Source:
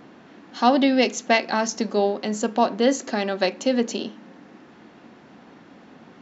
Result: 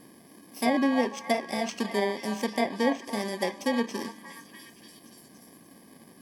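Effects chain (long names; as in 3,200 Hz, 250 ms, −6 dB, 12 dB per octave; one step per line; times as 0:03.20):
samples in bit-reversed order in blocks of 32 samples
echo through a band-pass that steps 292 ms, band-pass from 910 Hz, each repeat 0.7 octaves, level −8 dB
treble cut that deepens with the level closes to 2,400 Hz, closed at −14 dBFS
level −4.5 dB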